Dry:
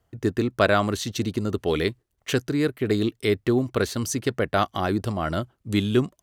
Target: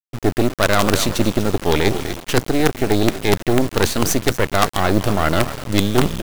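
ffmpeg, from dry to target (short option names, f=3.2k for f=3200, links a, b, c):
-filter_complex "[0:a]asplit=6[a][b][c][d][e][f];[b]adelay=247,afreqshift=-42,volume=-17dB[g];[c]adelay=494,afreqshift=-84,volume=-21.9dB[h];[d]adelay=741,afreqshift=-126,volume=-26.8dB[i];[e]adelay=988,afreqshift=-168,volume=-31.6dB[j];[f]adelay=1235,afreqshift=-210,volume=-36.5dB[k];[a][g][h][i][j][k]amix=inputs=6:normalize=0,areverse,acompressor=threshold=-30dB:ratio=5,areverse,acrusher=bits=5:dc=4:mix=0:aa=0.000001,agate=range=-33dB:threshold=-45dB:ratio=3:detection=peak,apsyclip=22dB,volume=-3dB"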